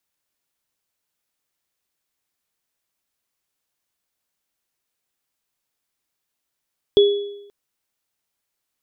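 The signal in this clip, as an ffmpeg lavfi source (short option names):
-f lavfi -i "aevalsrc='0.422*pow(10,-3*t/0.85)*sin(2*PI*406*t)+0.119*pow(10,-3*t/0.71)*sin(2*PI*3380*t)':d=0.53:s=44100"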